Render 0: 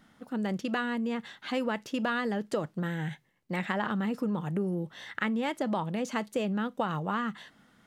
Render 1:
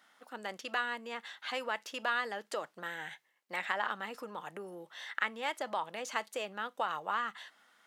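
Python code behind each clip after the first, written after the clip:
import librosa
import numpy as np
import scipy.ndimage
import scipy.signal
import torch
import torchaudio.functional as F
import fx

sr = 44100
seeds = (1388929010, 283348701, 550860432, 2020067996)

y = scipy.signal.sosfilt(scipy.signal.butter(2, 730.0, 'highpass', fs=sr, output='sos'), x)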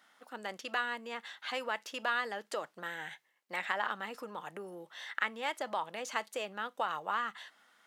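y = fx.quant_float(x, sr, bits=6)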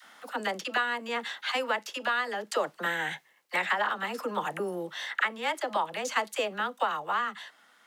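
y = fx.rider(x, sr, range_db=5, speed_s=0.5)
y = fx.dispersion(y, sr, late='lows', ms=43.0, hz=590.0)
y = F.gain(torch.from_numpy(y), 7.0).numpy()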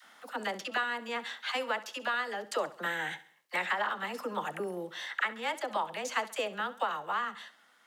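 y = fx.echo_feedback(x, sr, ms=67, feedback_pct=43, wet_db=-17)
y = F.gain(torch.from_numpy(y), -3.5).numpy()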